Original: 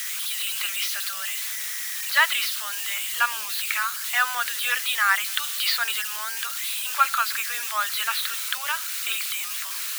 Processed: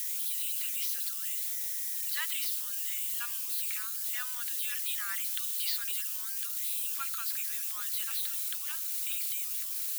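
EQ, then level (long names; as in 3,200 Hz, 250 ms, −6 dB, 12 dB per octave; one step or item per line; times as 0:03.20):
high-pass filter 270 Hz 24 dB per octave
first difference
−7.0 dB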